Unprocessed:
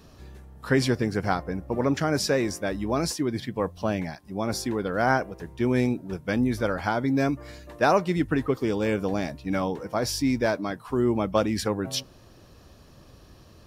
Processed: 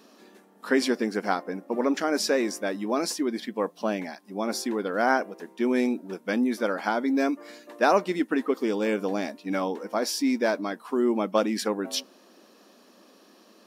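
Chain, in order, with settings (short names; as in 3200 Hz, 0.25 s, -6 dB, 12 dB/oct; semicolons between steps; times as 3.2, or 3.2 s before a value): brick-wall FIR high-pass 190 Hz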